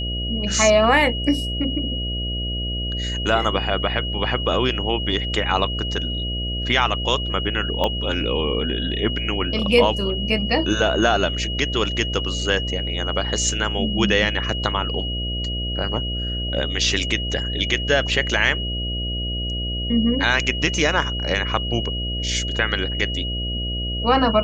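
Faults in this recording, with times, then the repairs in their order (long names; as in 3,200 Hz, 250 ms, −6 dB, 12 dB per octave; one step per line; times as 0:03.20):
mains buzz 60 Hz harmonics 11 −27 dBFS
whistle 2,900 Hz −27 dBFS
0:07.84: click −9 dBFS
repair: click removal
notch filter 2,900 Hz, Q 30
hum removal 60 Hz, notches 11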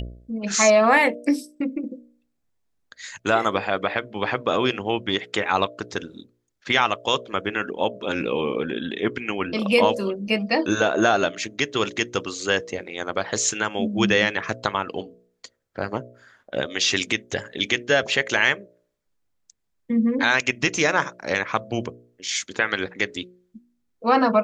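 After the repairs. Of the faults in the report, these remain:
0:07.84: click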